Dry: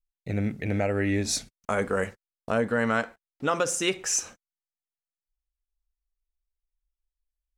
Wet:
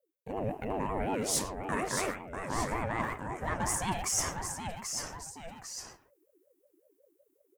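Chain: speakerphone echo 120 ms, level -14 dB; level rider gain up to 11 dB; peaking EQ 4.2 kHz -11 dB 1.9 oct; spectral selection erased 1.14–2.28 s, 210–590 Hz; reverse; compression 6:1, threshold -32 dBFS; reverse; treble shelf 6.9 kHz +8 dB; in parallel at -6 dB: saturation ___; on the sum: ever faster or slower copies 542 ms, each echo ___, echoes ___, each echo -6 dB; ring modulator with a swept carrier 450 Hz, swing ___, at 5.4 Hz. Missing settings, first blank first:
-26.5 dBFS, -1 st, 2, 30%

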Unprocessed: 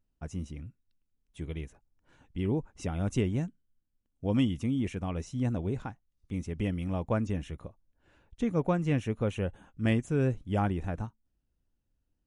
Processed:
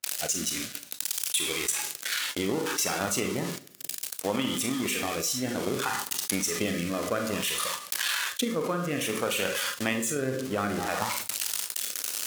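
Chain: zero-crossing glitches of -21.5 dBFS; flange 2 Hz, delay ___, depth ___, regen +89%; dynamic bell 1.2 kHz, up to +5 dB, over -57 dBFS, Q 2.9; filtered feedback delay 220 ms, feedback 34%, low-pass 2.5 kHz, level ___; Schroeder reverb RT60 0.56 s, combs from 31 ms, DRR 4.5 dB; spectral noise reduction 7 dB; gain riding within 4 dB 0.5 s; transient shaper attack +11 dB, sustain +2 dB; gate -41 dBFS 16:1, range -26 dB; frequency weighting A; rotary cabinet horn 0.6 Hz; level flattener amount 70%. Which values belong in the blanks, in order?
2.9 ms, 3.8 ms, -17.5 dB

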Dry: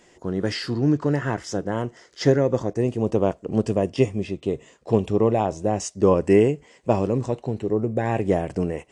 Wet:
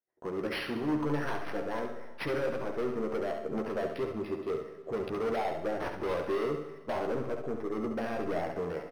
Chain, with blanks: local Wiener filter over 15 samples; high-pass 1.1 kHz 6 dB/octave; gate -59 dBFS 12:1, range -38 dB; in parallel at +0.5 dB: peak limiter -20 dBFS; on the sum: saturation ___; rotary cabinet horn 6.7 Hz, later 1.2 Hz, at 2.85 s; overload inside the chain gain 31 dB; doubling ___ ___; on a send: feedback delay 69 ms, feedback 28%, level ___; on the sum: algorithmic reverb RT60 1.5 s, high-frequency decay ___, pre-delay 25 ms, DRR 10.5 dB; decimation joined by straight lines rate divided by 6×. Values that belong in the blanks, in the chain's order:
-14.5 dBFS, 13 ms, -5 dB, -7 dB, 0.85×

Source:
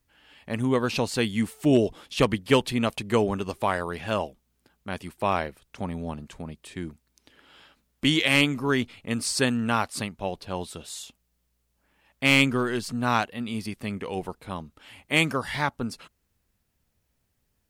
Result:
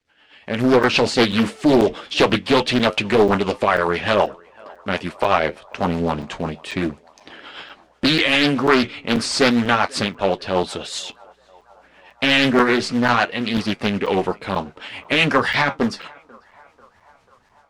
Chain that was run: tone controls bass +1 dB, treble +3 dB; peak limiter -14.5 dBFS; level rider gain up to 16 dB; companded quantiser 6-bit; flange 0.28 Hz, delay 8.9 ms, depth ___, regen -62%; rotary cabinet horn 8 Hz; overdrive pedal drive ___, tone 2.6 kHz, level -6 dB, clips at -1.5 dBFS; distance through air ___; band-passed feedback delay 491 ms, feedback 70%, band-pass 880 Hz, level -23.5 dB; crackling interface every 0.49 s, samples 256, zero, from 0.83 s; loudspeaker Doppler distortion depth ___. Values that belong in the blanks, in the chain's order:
3.6 ms, 17 dB, 63 m, 0.54 ms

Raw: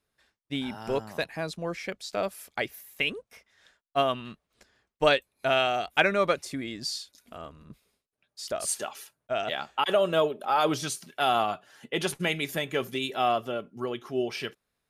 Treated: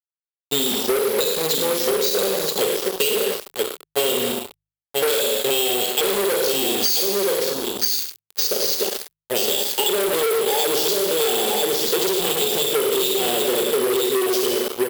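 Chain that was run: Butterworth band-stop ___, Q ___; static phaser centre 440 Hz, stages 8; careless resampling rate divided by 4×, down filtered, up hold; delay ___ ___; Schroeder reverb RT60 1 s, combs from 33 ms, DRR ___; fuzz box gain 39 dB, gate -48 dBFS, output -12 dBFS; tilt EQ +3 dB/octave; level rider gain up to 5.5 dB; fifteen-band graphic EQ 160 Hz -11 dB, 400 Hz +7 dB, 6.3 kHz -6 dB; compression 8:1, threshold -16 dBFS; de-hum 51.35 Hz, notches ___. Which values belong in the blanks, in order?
1.3 kHz, 0.5, 981 ms, -6.5 dB, 2 dB, 3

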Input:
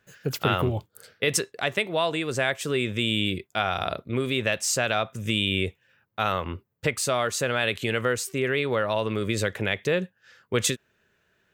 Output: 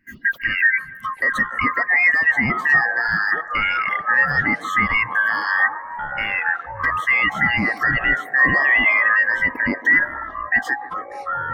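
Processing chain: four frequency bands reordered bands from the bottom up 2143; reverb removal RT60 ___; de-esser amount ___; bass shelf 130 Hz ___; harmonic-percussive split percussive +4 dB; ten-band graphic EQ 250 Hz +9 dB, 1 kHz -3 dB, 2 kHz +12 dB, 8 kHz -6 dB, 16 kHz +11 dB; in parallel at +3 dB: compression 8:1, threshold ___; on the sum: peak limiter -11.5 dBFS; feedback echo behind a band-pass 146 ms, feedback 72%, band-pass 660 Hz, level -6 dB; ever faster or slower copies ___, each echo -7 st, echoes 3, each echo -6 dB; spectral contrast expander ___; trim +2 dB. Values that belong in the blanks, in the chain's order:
1.1 s, 85%, +7.5 dB, -28 dBFS, 670 ms, 1.5:1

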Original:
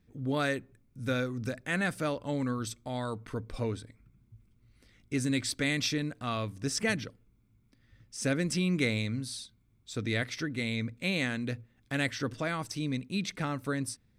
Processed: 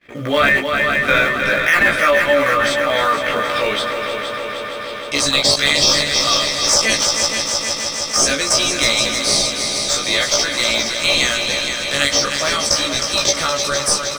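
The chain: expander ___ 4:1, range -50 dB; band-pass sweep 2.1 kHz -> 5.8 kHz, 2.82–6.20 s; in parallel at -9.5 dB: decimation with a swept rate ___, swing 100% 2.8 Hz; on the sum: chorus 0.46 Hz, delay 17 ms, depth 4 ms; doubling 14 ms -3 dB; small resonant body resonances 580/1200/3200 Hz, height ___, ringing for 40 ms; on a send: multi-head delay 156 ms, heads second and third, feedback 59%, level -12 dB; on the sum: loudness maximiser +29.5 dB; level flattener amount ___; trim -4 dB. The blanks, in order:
-55 dBFS, 22×, 11 dB, 50%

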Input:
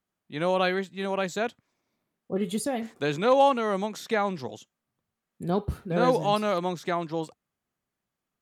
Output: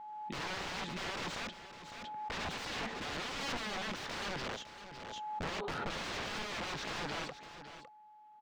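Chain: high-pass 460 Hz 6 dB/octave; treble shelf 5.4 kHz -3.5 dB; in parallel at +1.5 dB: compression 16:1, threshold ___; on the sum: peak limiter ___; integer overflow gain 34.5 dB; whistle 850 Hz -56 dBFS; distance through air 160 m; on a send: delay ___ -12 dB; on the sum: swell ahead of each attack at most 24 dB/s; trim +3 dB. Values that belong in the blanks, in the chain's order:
-33 dBFS, -19 dBFS, 556 ms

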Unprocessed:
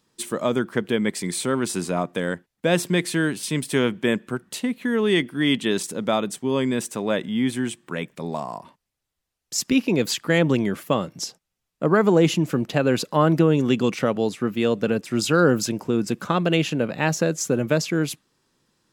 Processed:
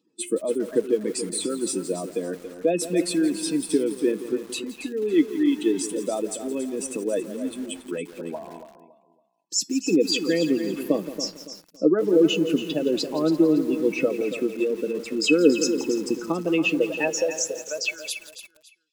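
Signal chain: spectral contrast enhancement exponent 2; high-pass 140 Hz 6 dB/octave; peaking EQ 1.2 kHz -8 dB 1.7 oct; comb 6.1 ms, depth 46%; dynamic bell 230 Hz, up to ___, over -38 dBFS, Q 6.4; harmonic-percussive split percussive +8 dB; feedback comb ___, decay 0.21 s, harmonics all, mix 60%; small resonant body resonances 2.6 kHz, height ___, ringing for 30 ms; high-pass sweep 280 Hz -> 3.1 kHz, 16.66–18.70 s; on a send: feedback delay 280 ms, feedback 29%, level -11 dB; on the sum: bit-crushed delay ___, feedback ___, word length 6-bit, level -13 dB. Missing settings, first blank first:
-4 dB, 430 Hz, 15 dB, 170 ms, 55%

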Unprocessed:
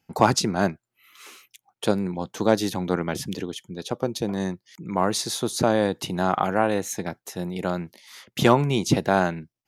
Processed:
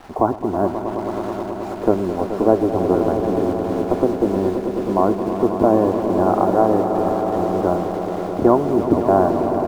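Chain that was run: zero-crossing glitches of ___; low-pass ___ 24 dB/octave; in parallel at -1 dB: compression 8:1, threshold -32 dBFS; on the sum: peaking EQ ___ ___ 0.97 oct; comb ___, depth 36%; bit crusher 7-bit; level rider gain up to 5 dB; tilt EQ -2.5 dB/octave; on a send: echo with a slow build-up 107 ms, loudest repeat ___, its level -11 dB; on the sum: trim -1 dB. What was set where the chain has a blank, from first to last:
-15 dBFS, 1.1 kHz, 140 Hz, -15 dB, 2.9 ms, 5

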